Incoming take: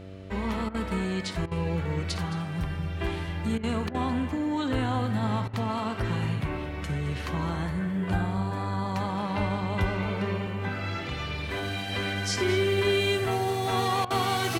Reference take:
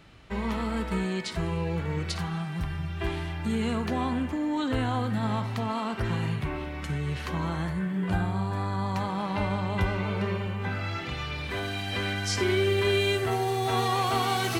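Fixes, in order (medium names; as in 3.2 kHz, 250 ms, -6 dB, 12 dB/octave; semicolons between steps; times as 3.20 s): de-hum 95.4 Hz, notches 7; interpolate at 0.69/1.46/3.58/3.89/5.48/14.05 s, 53 ms; inverse comb 217 ms -15 dB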